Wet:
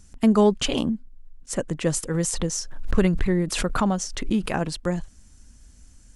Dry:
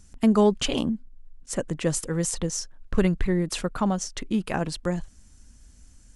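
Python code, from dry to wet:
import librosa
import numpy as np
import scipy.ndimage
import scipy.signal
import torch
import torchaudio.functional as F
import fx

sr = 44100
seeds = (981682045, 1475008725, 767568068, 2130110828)

y = fx.pre_swell(x, sr, db_per_s=57.0, at=(2.14, 4.52))
y = F.gain(torch.from_numpy(y), 1.5).numpy()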